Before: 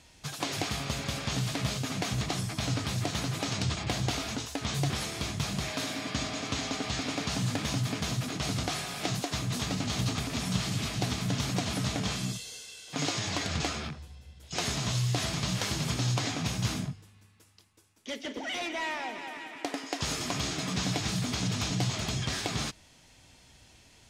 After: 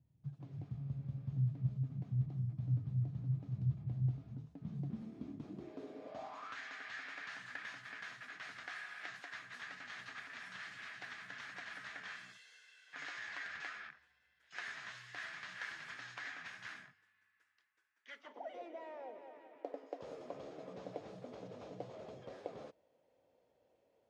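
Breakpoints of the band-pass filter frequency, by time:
band-pass filter, Q 5.5
4.28 s 130 Hz
5.98 s 430 Hz
6.59 s 1.7 kHz
18.10 s 1.7 kHz
18.53 s 520 Hz

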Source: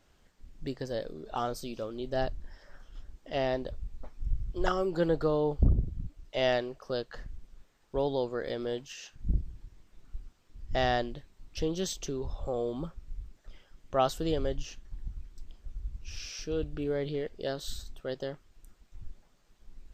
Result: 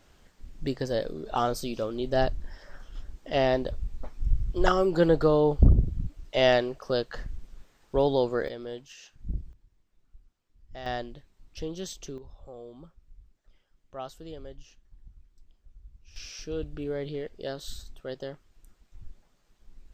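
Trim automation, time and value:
+6 dB
from 8.48 s -4 dB
from 9.53 s -13 dB
from 10.86 s -4 dB
from 12.18 s -12 dB
from 16.16 s -1 dB

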